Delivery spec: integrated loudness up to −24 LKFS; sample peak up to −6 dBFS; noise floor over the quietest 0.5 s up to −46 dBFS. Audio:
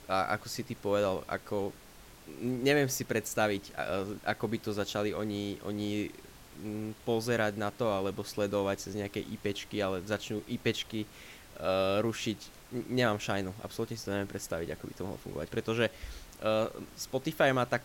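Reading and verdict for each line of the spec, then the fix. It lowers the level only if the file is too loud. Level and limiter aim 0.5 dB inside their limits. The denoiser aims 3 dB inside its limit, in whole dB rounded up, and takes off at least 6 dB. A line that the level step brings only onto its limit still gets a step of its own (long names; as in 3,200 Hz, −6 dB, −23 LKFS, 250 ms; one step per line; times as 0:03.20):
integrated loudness −33.5 LKFS: in spec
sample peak −14.0 dBFS: in spec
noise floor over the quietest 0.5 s −53 dBFS: in spec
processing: no processing needed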